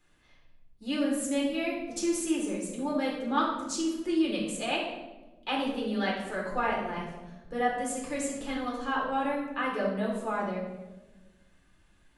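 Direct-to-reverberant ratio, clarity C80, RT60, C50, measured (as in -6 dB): -4.0 dB, 5.5 dB, 1.2 s, 2.5 dB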